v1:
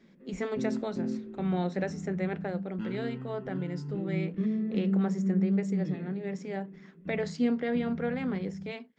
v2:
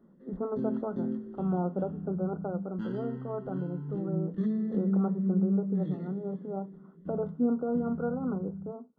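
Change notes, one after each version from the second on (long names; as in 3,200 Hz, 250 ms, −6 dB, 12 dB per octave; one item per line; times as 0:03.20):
speech: add linear-phase brick-wall low-pass 1,500 Hz
master: add Butterworth band-reject 2,400 Hz, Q 2.1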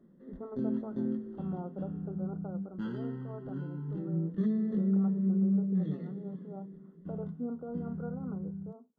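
speech −10.0 dB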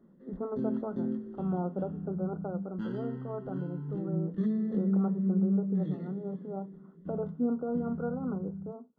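speech +7.5 dB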